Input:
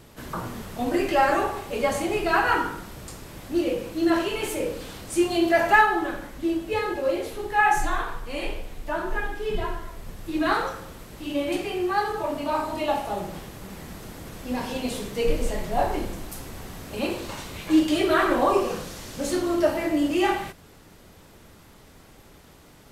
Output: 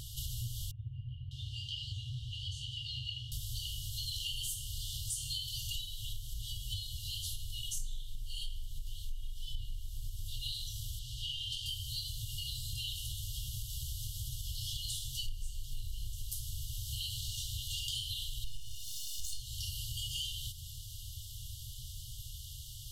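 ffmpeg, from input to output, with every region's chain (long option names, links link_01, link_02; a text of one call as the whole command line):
ffmpeg -i in.wav -filter_complex "[0:a]asettb=1/sr,asplit=3[link_01][link_02][link_03];[link_01]atrim=end=0.714[link_04];[link_02]atrim=start=0.71:end=3.32,asetpts=PTS-STARTPTS,afade=type=in:duration=0.004:curve=qsin,afade=type=out:start_time=2.606:duration=0.004:curve=qsin,highpass=120,lowpass=2200,acrossover=split=1500[link_05][link_06];[link_06]adelay=600[link_07];[link_05][link_07]amix=inputs=2:normalize=0,atrim=end_sample=115101[link_08];[link_03]atrim=start=3.316[link_09];[link_04][link_08]acrossfade=duration=0.004:curve1=hsin:curve2=qsin[link_10];[link_10][link_09]acrossfade=duration=0.004:curve1=qsin:curve2=hsin,asettb=1/sr,asplit=3[link_11][link_12][link_13];[link_11]atrim=end=10.994[link_14];[link_12]atrim=start=10.99:end=11.66,asetpts=PTS-STARTPTS,afade=type=in:duration=0.004:curve=qsin,afade=type=out:start_time=0.666:duration=0.004:curve=qsin,highshelf=frequency=12000:gain=-8,asplit=2[link_15][link_16];[link_16]highpass=frequency=720:poles=1,volume=12dB,asoftclip=type=tanh:threshold=-16dB[link_17];[link_15][link_17]amix=inputs=2:normalize=0,lowpass=frequency=1700:poles=1,volume=-6dB[link_18];[link_13]atrim=start=11.656[link_19];[link_14][link_18]acrossfade=duration=0.004:curve1=hsin:curve2=qsin[link_20];[link_20][link_19]acrossfade=duration=0.004:curve1=qsin:curve2=hsin,asettb=1/sr,asplit=3[link_21][link_22][link_23];[link_21]atrim=end=18.444[link_24];[link_22]atrim=start=18.44:end=19.4,asetpts=PTS-STARTPTS,afade=type=in:duration=0.004:curve=qsin,afade=type=out:start_time=0.956:duration=0.004:curve=qsin,highpass=frequency=350:width=0.5412,highpass=frequency=350:width=1.3066,aeval=exprs='max(val(0),0)':channel_layout=same,aecho=1:1:1.4:0.93,atrim=end_sample=42336[link_25];[link_23]atrim=start=19.396[link_26];[link_24][link_25]acrossfade=duration=0.004:curve1=hsin:curve2=qsin[link_27];[link_27][link_26]acrossfade=duration=0.004:curve1=qsin:curve2=hsin,afftfilt=real='re*(1-between(b*sr/4096,130,2800))':imag='im*(1-between(b*sr/4096,130,2800))':win_size=4096:overlap=0.75,acompressor=threshold=-45dB:ratio=6,volume=9dB" out.wav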